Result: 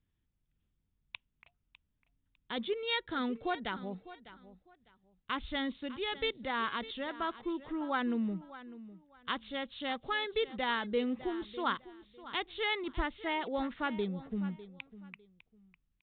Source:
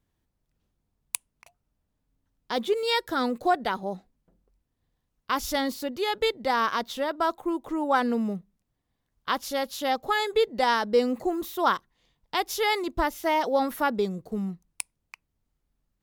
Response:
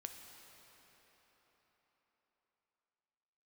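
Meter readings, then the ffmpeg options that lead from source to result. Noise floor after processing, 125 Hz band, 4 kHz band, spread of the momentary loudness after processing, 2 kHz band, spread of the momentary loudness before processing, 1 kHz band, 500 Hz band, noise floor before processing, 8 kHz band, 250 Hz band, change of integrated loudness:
-81 dBFS, -4.5 dB, -6.0 dB, 17 LU, -6.0 dB, 10 LU, -11.0 dB, -11.0 dB, -79 dBFS, under -40 dB, -6.0 dB, -8.5 dB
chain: -filter_complex "[0:a]equalizer=f=690:t=o:w=2:g=-11,asplit=2[a][b];[b]aecho=0:1:602|1204:0.158|0.0365[c];[a][c]amix=inputs=2:normalize=0,aresample=8000,aresample=44100,volume=-2.5dB"

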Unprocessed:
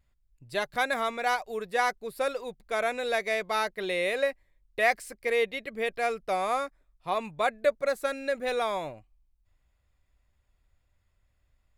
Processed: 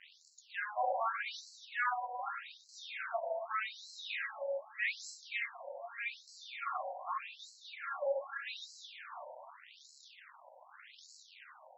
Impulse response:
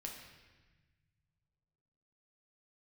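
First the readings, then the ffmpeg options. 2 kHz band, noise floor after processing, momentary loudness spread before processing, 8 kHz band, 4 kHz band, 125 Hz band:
-8.5 dB, -62 dBFS, 6 LU, -9.0 dB, -8.5 dB, under -40 dB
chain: -filter_complex "[0:a]aeval=exprs='val(0)+0.5*0.0237*sgn(val(0))':c=same[a];[1:a]atrim=start_sample=2205,asetrate=25578,aresample=44100[b];[a][b]afir=irnorm=-1:irlink=0,afftfilt=real='re*between(b*sr/1024,680*pow(5700/680,0.5+0.5*sin(2*PI*0.83*pts/sr))/1.41,680*pow(5700/680,0.5+0.5*sin(2*PI*0.83*pts/sr))*1.41)':imag='im*between(b*sr/1024,680*pow(5700/680,0.5+0.5*sin(2*PI*0.83*pts/sr))/1.41,680*pow(5700/680,0.5+0.5*sin(2*PI*0.83*pts/sr))*1.41)':win_size=1024:overlap=0.75,volume=-5dB"

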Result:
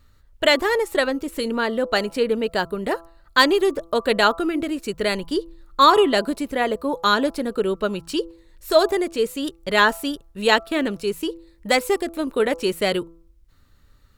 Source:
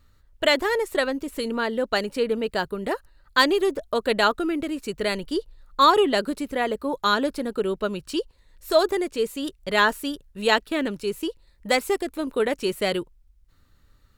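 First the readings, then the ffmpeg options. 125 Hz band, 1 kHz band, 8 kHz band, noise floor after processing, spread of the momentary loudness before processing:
+3.0 dB, +3.0 dB, +3.0 dB, -55 dBFS, 10 LU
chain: -af "bandreject=f=166.8:t=h:w=4,bandreject=f=333.6:t=h:w=4,bandreject=f=500.4:t=h:w=4,bandreject=f=667.2:t=h:w=4,bandreject=f=834:t=h:w=4,bandreject=f=1.0008k:t=h:w=4,bandreject=f=1.1676k:t=h:w=4,bandreject=f=1.3344k:t=h:w=4,volume=3dB"

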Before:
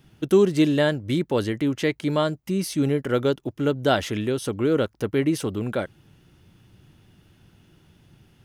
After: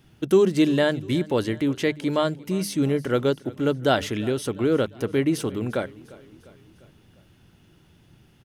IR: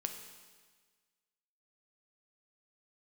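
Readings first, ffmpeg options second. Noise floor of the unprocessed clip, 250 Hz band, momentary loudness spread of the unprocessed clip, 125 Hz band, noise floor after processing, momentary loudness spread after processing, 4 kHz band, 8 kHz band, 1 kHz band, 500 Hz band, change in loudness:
-59 dBFS, 0.0 dB, 7 LU, -1.0 dB, -57 dBFS, 7 LU, 0.0 dB, 0.0 dB, 0.0 dB, 0.0 dB, 0.0 dB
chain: -af "bandreject=f=50:t=h:w=6,bandreject=f=100:t=h:w=6,bandreject=f=150:t=h:w=6,bandreject=f=200:t=h:w=6,aecho=1:1:350|700|1050|1400:0.0891|0.0499|0.0279|0.0157"

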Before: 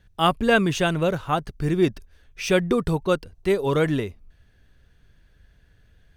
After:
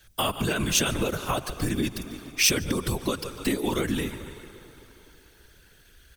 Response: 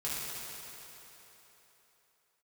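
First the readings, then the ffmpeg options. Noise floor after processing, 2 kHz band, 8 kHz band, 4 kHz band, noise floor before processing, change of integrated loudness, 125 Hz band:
-57 dBFS, -4.0 dB, +11.5 dB, +3.0 dB, -59 dBFS, -3.5 dB, -5.0 dB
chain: -filter_complex "[0:a]equalizer=f=75:w=0.65:g=-5,aecho=1:1:146|292|438|584:0.0891|0.0499|0.0279|0.0157,asplit=2[a][b];[1:a]atrim=start_sample=2205[c];[b][c]afir=irnorm=-1:irlink=0,volume=-25dB[d];[a][d]amix=inputs=2:normalize=0,alimiter=limit=-15dB:level=0:latency=1:release=38,afftfilt=real='hypot(re,im)*cos(2*PI*random(0))':imag='hypot(re,im)*sin(2*PI*random(1))':win_size=512:overlap=0.75,acompressor=threshold=-34dB:ratio=6,adynamicequalizer=threshold=0.00316:dfrequency=290:dqfactor=1.4:tfrequency=290:tqfactor=1.4:attack=5:release=100:ratio=0.375:range=2:mode=boostabove:tftype=bell,afreqshift=-69,crystalizer=i=5:c=0,volume=8dB"

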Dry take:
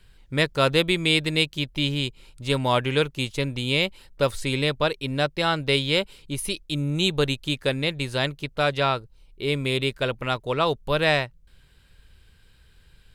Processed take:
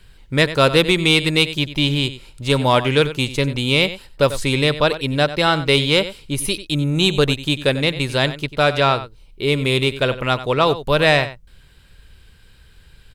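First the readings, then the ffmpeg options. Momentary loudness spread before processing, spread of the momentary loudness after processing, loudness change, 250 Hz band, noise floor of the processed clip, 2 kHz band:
7 LU, 7 LU, +6.5 dB, +6.5 dB, -49 dBFS, +6.5 dB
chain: -filter_complex "[0:a]asplit=2[a][b];[b]adelay=93.29,volume=-14dB,highshelf=f=4k:g=-2.1[c];[a][c]amix=inputs=2:normalize=0,acontrast=46,volume=1dB"

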